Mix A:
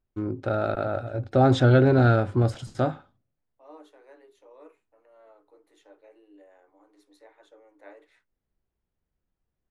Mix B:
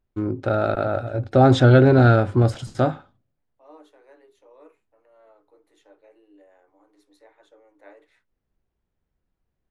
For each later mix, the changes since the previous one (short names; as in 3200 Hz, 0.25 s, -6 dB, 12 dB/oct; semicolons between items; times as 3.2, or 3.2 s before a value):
first voice +4.5 dB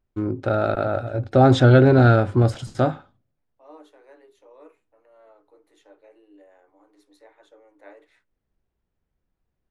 second voice: send +11.5 dB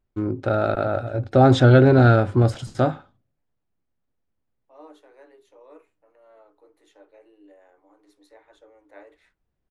second voice: entry +1.10 s